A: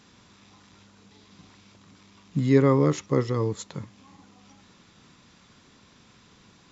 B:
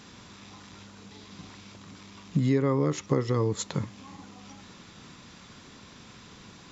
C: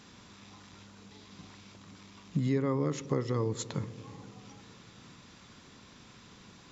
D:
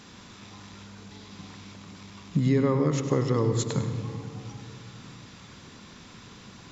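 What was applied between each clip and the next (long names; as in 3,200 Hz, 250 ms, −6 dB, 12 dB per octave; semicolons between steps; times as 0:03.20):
downward compressor 6 to 1, threshold −28 dBFS, peak gain reduction 14.5 dB; level +6.5 dB
delay with a low-pass on its return 99 ms, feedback 82%, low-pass 590 Hz, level −17 dB; level −5 dB
convolution reverb RT60 2.0 s, pre-delay 101 ms, DRR 7 dB; level +5.5 dB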